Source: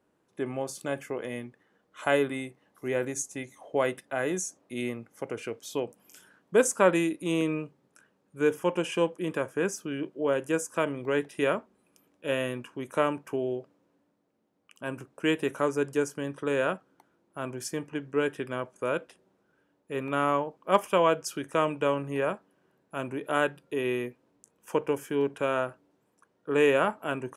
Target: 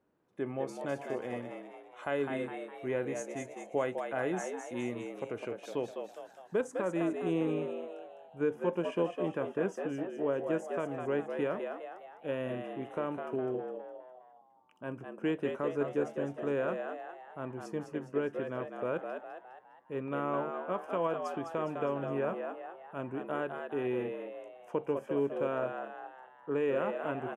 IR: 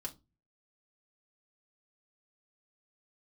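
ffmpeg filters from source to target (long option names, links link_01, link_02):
-filter_complex "[0:a]alimiter=limit=-16dB:level=0:latency=1:release=183,asetnsamples=nb_out_samples=441:pad=0,asendcmd='6.61 lowpass f 1000',lowpass=frequency=2000:poles=1,asplit=7[link_01][link_02][link_03][link_04][link_05][link_06][link_07];[link_02]adelay=205,afreqshift=85,volume=-6dB[link_08];[link_03]adelay=410,afreqshift=170,volume=-12.4dB[link_09];[link_04]adelay=615,afreqshift=255,volume=-18.8dB[link_10];[link_05]adelay=820,afreqshift=340,volume=-25.1dB[link_11];[link_06]adelay=1025,afreqshift=425,volume=-31.5dB[link_12];[link_07]adelay=1230,afreqshift=510,volume=-37.9dB[link_13];[link_01][link_08][link_09][link_10][link_11][link_12][link_13]amix=inputs=7:normalize=0,volume=-3.5dB"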